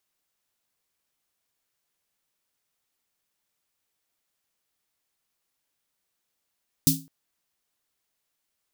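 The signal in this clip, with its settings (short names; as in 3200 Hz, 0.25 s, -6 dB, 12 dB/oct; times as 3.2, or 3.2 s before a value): snare drum length 0.21 s, tones 160 Hz, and 270 Hz, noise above 3900 Hz, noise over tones 1.5 dB, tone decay 0.32 s, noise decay 0.24 s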